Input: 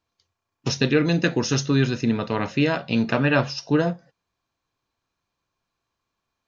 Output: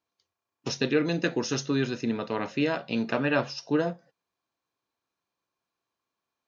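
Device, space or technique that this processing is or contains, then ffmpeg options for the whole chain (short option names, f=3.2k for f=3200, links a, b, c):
filter by subtraction: -filter_complex "[0:a]asplit=2[a][b];[b]lowpass=360,volume=-1[c];[a][c]amix=inputs=2:normalize=0,volume=-6dB"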